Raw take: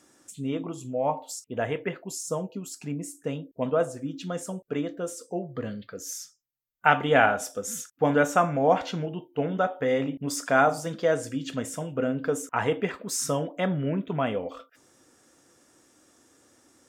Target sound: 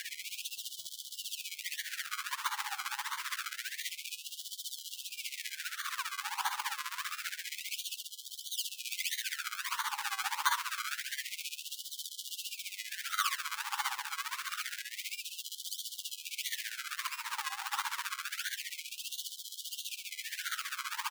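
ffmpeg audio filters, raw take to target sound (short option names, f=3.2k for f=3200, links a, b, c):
-filter_complex "[0:a]aeval=exprs='val(0)+0.5*0.0531*sgn(val(0))':c=same,equalizer=f=560:t=o:w=0.7:g=-9.5,asplit=2[a][b];[b]adelay=229,lowpass=f=1.5k:p=1,volume=-4.5dB,asplit=2[c][d];[d]adelay=229,lowpass=f=1.5k:p=1,volume=0.46,asplit=2[e][f];[f]adelay=229,lowpass=f=1.5k:p=1,volume=0.46,asplit=2[g][h];[h]adelay=229,lowpass=f=1.5k:p=1,volume=0.46,asplit=2[i][j];[j]adelay=229,lowpass=f=1.5k:p=1,volume=0.46,asplit=2[k][l];[l]adelay=229,lowpass=f=1.5k:p=1,volume=0.46[m];[a][c][e][g][i][k][m]amix=inputs=7:normalize=0,asetrate=35280,aresample=44100,acrusher=samples=33:mix=1:aa=0.000001:lfo=1:lforange=33:lforate=1.5,equalizer=f=170:t=o:w=0.55:g=-14.5,volume=18dB,asoftclip=hard,volume=-18dB,alimiter=level_in=1dB:limit=-24dB:level=0:latency=1:release=178,volume=-1dB,tremolo=f=15:d=0.83,afftfilt=real='re*gte(b*sr/1024,770*pow(3000/770,0.5+0.5*sin(2*PI*0.27*pts/sr)))':imag='im*gte(b*sr/1024,770*pow(3000/770,0.5+0.5*sin(2*PI*0.27*pts/sr)))':win_size=1024:overlap=0.75,volume=6dB"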